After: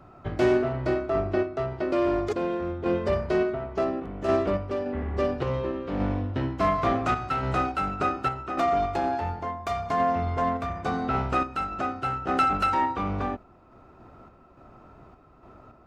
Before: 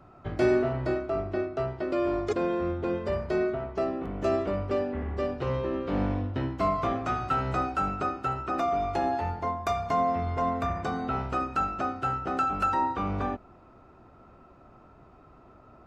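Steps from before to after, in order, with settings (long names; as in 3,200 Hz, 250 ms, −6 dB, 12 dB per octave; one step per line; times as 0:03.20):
phase distortion by the signal itself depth 0.12 ms
sample-and-hold tremolo
level +5 dB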